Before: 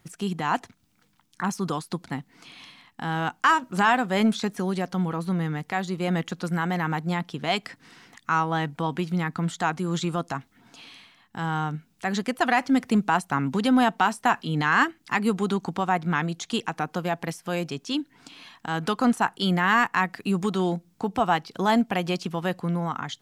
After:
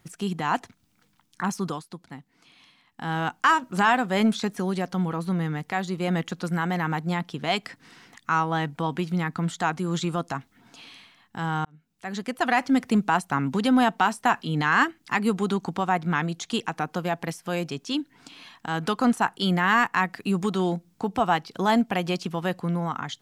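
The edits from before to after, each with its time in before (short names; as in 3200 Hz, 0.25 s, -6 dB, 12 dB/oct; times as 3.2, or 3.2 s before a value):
1.61–3.11 dip -9.5 dB, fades 0.26 s
11.65–12.58 fade in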